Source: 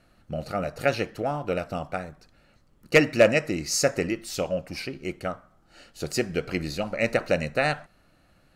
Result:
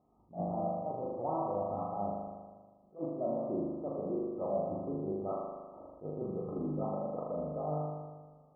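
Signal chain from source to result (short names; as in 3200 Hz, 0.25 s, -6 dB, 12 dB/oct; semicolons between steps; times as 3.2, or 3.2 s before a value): gliding pitch shift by +2 st ending unshifted; gate -58 dBFS, range -9 dB; HPF 210 Hz 6 dB/oct; reverse; compressor 10:1, threshold -33 dBFS, peak gain reduction 20.5 dB; reverse; limiter -30.5 dBFS, peak gain reduction 9.5 dB; brick-wall FIR low-pass 1300 Hz; on a send: flutter echo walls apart 6.8 m, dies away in 1.4 s; on the sum: attack slew limiter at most 260 dB/s; gain +2.5 dB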